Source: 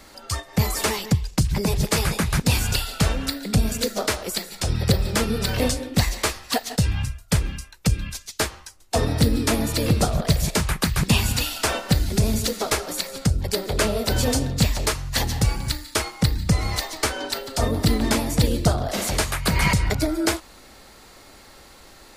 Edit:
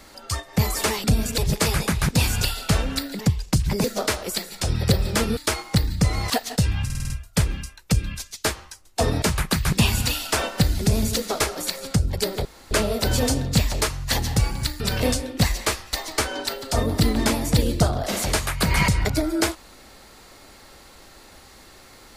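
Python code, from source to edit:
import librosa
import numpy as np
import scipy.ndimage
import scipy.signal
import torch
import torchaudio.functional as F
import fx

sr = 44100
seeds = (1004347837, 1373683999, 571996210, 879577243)

y = fx.edit(x, sr, fx.swap(start_s=1.04, length_s=0.65, other_s=3.5, other_length_s=0.34),
    fx.swap(start_s=5.37, length_s=1.13, other_s=15.85, other_length_s=0.93),
    fx.stutter(start_s=7.05, slice_s=0.05, count=6),
    fx.cut(start_s=9.17, length_s=1.36),
    fx.insert_room_tone(at_s=13.76, length_s=0.26), tone=tone)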